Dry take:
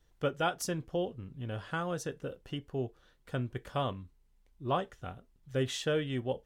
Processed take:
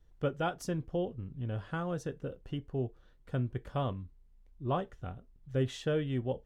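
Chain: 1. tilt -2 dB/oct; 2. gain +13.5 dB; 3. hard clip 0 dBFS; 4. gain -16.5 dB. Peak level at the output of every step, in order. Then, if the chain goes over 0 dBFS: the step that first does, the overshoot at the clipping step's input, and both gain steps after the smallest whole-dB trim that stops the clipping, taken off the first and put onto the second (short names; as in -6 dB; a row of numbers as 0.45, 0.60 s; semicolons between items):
-16.0, -2.5, -2.5, -19.0 dBFS; no overload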